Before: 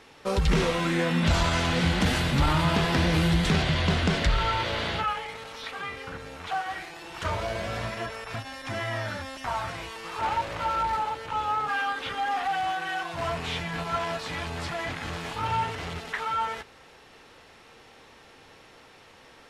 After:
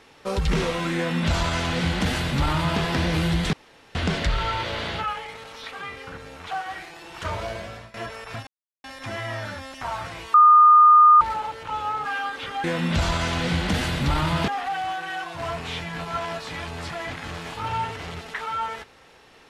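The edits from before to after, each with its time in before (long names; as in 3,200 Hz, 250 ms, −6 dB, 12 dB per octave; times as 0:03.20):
0:00.96–0:02.80: duplicate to 0:12.27
0:03.53–0:03.95: fill with room tone
0:07.47–0:07.94: fade out, to −21 dB
0:08.47: splice in silence 0.37 s
0:09.97–0:10.84: beep over 1,220 Hz −9 dBFS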